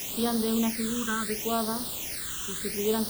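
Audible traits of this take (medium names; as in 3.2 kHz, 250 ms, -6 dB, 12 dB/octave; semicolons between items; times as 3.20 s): a quantiser's noise floor 6-bit, dither triangular; phasing stages 8, 0.72 Hz, lowest notch 640–2400 Hz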